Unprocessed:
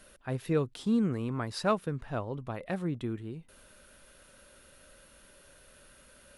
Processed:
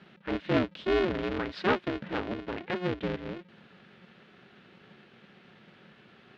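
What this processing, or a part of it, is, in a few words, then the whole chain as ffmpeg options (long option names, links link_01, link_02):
ring modulator pedal into a guitar cabinet: -af "aeval=exprs='val(0)*sgn(sin(2*PI*180*n/s))':channel_layout=same,highpass=110,equalizer=frequency=210:width_type=q:width=4:gain=4,equalizer=frequency=750:width_type=q:width=4:gain=-7,equalizer=frequency=1100:width_type=q:width=4:gain=-5,lowpass=frequency=3600:width=0.5412,lowpass=frequency=3600:width=1.3066,volume=3.5dB"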